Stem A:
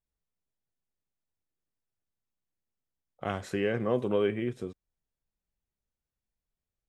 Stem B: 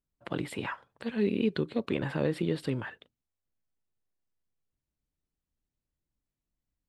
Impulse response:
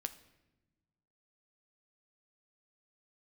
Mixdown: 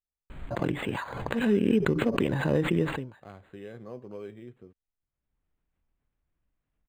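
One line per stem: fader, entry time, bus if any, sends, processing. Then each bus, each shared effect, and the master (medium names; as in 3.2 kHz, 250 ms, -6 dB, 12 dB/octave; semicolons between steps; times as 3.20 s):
-14.0 dB, 0.00 s, no send, none
+3.0 dB, 0.30 s, no send, band-stop 1.3 kHz, Q 9.6; swell ahead of each attack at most 41 dB/s; auto duck -23 dB, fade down 0.35 s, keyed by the first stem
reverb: none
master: bass shelf 74 Hz +6.5 dB; decimation joined by straight lines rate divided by 8×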